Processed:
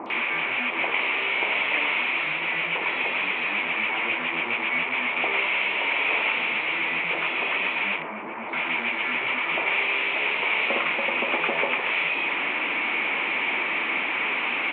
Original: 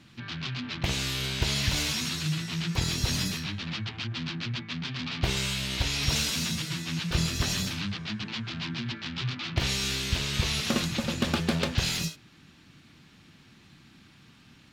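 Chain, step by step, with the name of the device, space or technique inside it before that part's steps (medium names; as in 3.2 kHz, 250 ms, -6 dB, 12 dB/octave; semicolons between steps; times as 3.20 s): digital answering machine (band-pass 390–3200 Hz; one-bit delta coder 16 kbps, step -28.5 dBFS; cabinet simulation 400–4200 Hz, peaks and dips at 950 Hz +6 dB, 1.6 kHz -7 dB, 2.3 kHz +10 dB); 7.92–8.43 s: low-pass 1.1 kHz 12 dB/octave; three bands offset in time lows, highs, mids 60/100 ms, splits 980/4500 Hz; trim +8 dB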